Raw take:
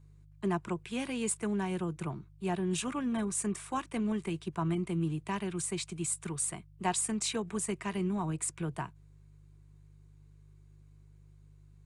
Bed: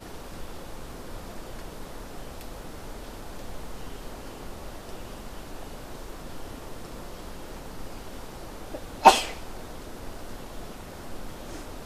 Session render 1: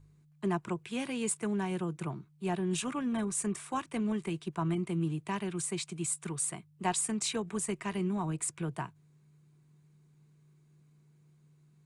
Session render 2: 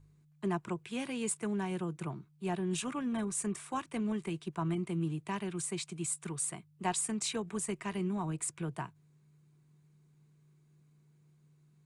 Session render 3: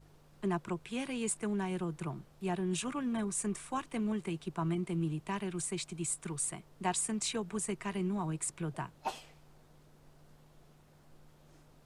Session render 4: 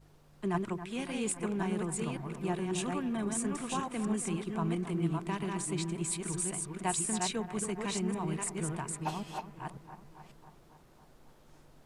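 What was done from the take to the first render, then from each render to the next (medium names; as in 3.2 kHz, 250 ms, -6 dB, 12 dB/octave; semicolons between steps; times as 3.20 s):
de-hum 50 Hz, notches 2
trim -2 dB
add bed -23.5 dB
chunks repeated in reverse 543 ms, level -3 dB; bucket-brigade echo 274 ms, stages 4096, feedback 64%, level -12 dB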